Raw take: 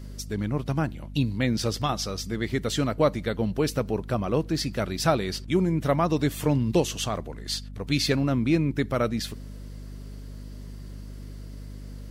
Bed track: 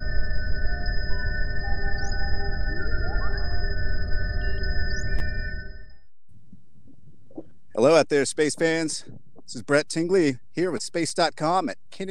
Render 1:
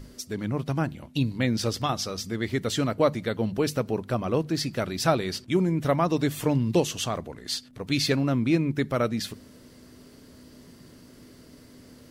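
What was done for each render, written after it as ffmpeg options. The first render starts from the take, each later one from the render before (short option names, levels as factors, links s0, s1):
-af "bandreject=f=50:t=h:w=6,bandreject=f=100:t=h:w=6,bandreject=f=150:t=h:w=6,bandreject=f=200:t=h:w=6"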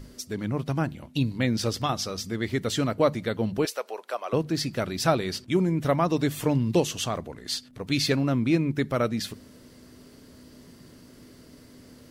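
-filter_complex "[0:a]asettb=1/sr,asplit=3[s0][s1][s2];[s0]atrim=end=3.654[s3];[s1]atrim=start=3.65:end=4.33,asetpts=PTS-STARTPTS,afade=t=in:d=0.004:c=qsin,afade=t=out:st=0.676:d=0.004:c=qsin,highpass=f=530:w=0.5412,highpass=f=530:w=1.3066[s4];[s2]atrim=start=4.326[s5];[s3][s4]acrossfade=d=0.004:c1=hsin:c2=qsin[s6];[s6][s5]acrossfade=d=0.004:c1=qsin:c2=hsin"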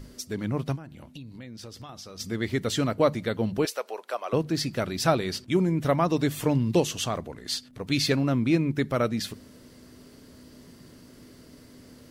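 -filter_complex "[0:a]asplit=3[s0][s1][s2];[s0]afade=t=out:st=0.75:d=0.02[s3];[s1]acompressor=threshold=0.01:ratio=6:attack=3.2:release=140:knee=1:detection=peak,afade=t=in:st=0.75:d=0.02,afade=t=out:st=2.19:d=0.02[s4];[s2]afade=t=in:st=2.19:d=0.02[s5];[s3][s4][s5]amix=inputs=3:normalize=0"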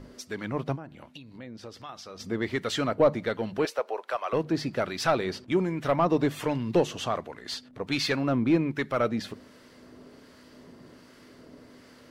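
-filter_complex "[0:a]asplit=2[s0][s1];[s1]highpass=f=720:p=1,volume=5.01,asoftclip=type=tanh:threshold=0.355[s2];[s0][s2]amix=inputs=2:normalize=0,lowpass=f=1500:p=1,volume=0.501,acrossover=split=1000[s3][s4];[s3]aeval=exprs='val(0)*(1-0.5/2+0.5/2*cos(2*PI*1.3*n/s))':c=same[s5];[s4]aeval=exprs='val(0)*(1-0.5/2-0.5/2*cos(2*PI*1.3*n/s))':c=same[s6];[s5][s6]amix=inputs=2:normalize=0"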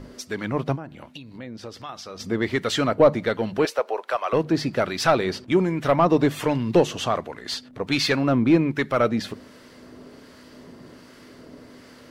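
-af "volume=1.88"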